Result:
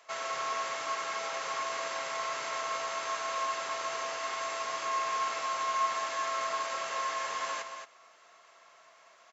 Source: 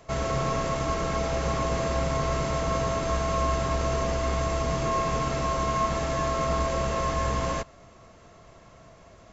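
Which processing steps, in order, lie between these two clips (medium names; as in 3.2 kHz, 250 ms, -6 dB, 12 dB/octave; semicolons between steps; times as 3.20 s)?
high-pass 1.1 kHz 12 dB/octave; treble shelf 5.2 kHz -5 dB; delay 224 ms -8 dB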